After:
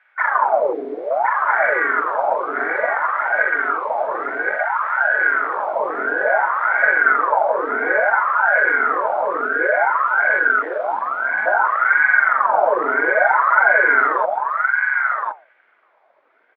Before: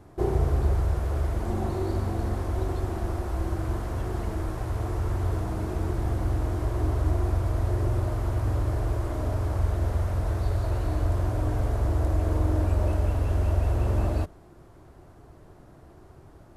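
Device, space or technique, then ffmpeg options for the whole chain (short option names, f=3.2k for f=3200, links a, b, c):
voice changer toy: -filter_complex "[0:a]afwtdn=0.0501,bandreject=f=60:t=h:w=6,bandreject=f=120:t=h:w=6,bandreject=f=180:t=h:w=6,bandreject=f=240:t=h:w=6,bandreject=f=300:t=h:w=6,bandreject=f=360:t=h:w=6,bandreject=f=420:t=h:w=6,asettb=1/sr,asplit=3[a][b][c];[a]atrim=end=10.624[d];[b]atrim=start=10.62:end=11.46,asetpts=PTS-STARTPTS,afade=t=in:d=0.004:c=qsin,afade=t=out:st=0.836:d=0.004:c=qsin,highpass=f=180:w=0.5412,highpass=f=180:w=1.3066[e];[c]atrim=start=11.456[f];[d][e]acrossfade=d=0.004:c1=hsin:c2=qsin[g];[g][f]acrossfade=d=0.004:c1=qsin:c2=hsin,aeval=exprs='val(0)*sin(2*PI*960*n/s+960*0.65/0.58*sin(2*PI*0.58*n/s))':c=same,highpass=520,equalizer=f=620:t=q:w=4:g=8,equalizer=f=880:t=q:w=4:g=3,equalizer=f=1.5k:t=q:w=4:g=5,equalizer=f=2.2k:t=q:w=4:g=10,equalizer=f=3.4k:t=q:w=4:g=6,lowpass=f=4.2k:w=0.5412,lowpass=f=4.2k:w=1.3066,aecho=1:1:1068:0.631,volume=6.5dB"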